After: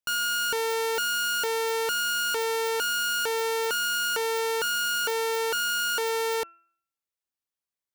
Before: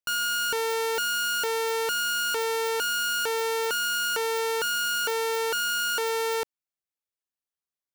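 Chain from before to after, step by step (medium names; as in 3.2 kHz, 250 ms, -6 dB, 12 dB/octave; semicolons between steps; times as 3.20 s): de-hum 338 Hz, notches 8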